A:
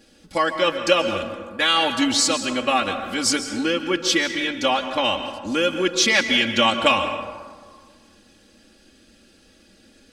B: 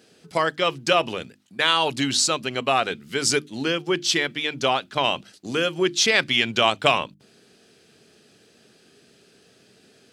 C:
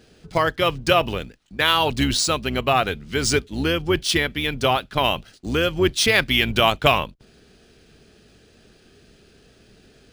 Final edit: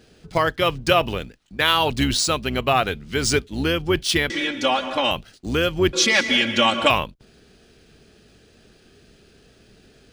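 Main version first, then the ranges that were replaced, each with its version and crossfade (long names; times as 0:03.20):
C
0:04.30–0:05.11: punch in from A
0:05.93–0:06.90: punch in from A
not used: B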